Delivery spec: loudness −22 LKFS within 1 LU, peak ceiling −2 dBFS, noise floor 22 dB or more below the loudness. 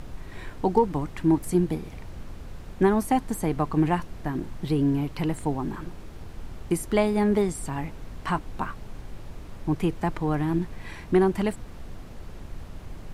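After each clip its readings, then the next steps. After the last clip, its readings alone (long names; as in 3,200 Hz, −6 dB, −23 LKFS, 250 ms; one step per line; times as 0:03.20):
background noise floor −41 dBFS; target noise floor −49 dBFS; integrated loudness −26.5 LKFS; sample peak −7.5 dBFS; target loudness −22.0 LKFS
→ noise reduction from a noise print 8 dB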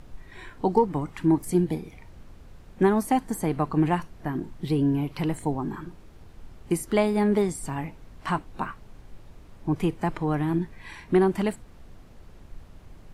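background noise floor −49 dBFS; integrated loudness −26.5 LKFS; sample peak −8.0 dBFS; target loudness −22.0 LKFS
→ level +4.5 dB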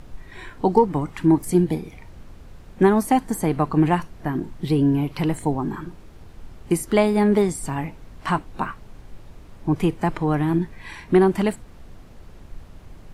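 integrated loudness −22.0 LKFS; sample peak −3.5 dBFS; background noise floor −44 dBFS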